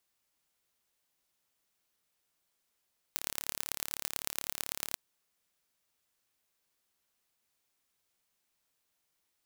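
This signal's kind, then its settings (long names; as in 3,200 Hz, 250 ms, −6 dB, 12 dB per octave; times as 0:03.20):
impulse train 35.9 per second, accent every 4, −4.5 dBFS 1.79 s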